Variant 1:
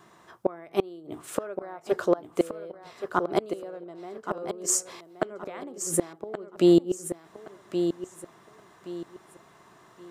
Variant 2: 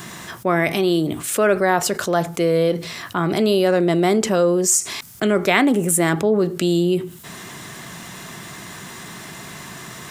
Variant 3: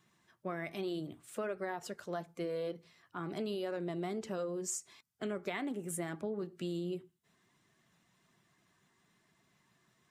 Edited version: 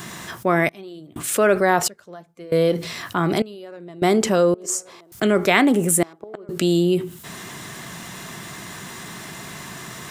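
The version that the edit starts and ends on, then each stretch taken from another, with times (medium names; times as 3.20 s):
2
0.69–1.16 s: from 3
1.88–2.52 s: from 3
3.42–4.02 s: from 3
4.54–5.12 s: from 1
6.03–6.49 s: from 1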